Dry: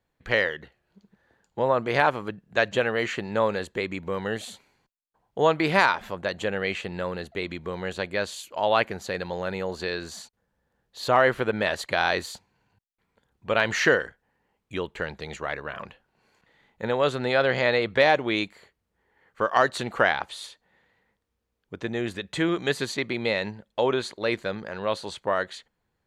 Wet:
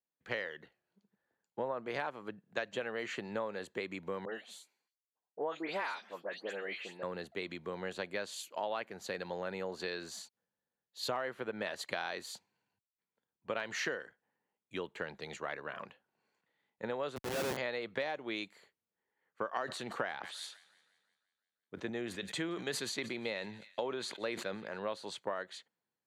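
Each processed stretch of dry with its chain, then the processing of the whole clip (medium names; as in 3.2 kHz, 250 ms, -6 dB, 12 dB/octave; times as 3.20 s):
4.25–7.03 s: high-pass 260 Hz + flange 1.3 Hz, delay 1.7 ms, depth 5.2 ms, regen -65% + phase dispersion highs, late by 106 ms, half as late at 2.7 kHz
17.16–17.57 s: peaking EQ 65 Hz +11.5 dB 0.27 oct + Schmitt trigger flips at -24 dBFS
19.55–24.79 s: feedback echo behind a high-pass 172 ms, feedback 67%, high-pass 1.8 kHz, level -22 dB + decay stretcher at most 94 dB/s
whole clip: compression 10:1, threshold -28 dBFS; high-pass 170 Hz 12 dB/octave; three bands expanded up and down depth 40%; trim -5.5 dB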